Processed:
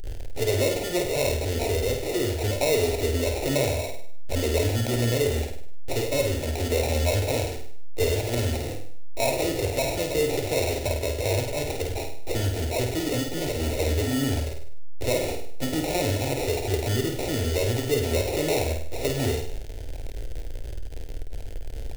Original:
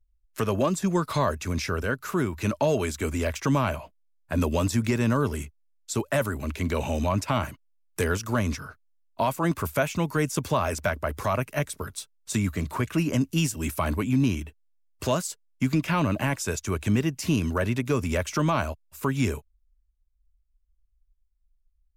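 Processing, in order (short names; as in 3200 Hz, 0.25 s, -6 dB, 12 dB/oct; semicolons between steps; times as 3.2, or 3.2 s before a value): zero-crossing step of -29 dBFS; ripple EQ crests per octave 0.91, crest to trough 6 dB; in parallel at -1 dB: limiter -21.5 dBFS, peak gain reduction 10.5 dB; on the sum: sample-rate reducer 1600 Hz, jitter 0%; fixed phaser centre 470 Hz, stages 4; on a send: flutter echo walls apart 8.7 m, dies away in 0.56 s; on the sum: gain -2.5 dB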